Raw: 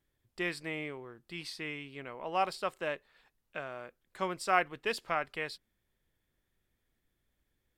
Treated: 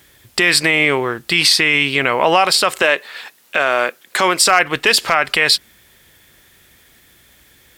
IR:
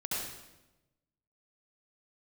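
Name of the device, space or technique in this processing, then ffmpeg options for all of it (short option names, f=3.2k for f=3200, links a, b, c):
mastering chain: -filter_complex "[0:a]highpass=51,equalizer=f=1.1k:t=o:w=0.77:g=-1.5,acompressor=threshold=-36dB:ratio=2,tiltshelf=f=800:g=-5.5,asoftclip=type=hard:threshold=-22.5dB,alimiter=level_in=31dB:limit=-1dB:release=50:level=0:latency=1,asettb=1/sr,asplit=3[a][b][c];[a]atrim=end=2.824[d];[b]atrim=start=2.82:end=4.42,asetpts=PTS-STARTPTS,afade=t=in:d=0.004:c=qsin,afade=t=out:st=1.596:d=0.004:c=qsin,highpass=240[e];[c]atrim=start=4.416[f];[d][e]acrossfade=d=0.004:c1=hsin:c2=qsin[g];[g][f]acrossfade=d=0.004:c1=qsin:c2=hsin,volume=-1dB"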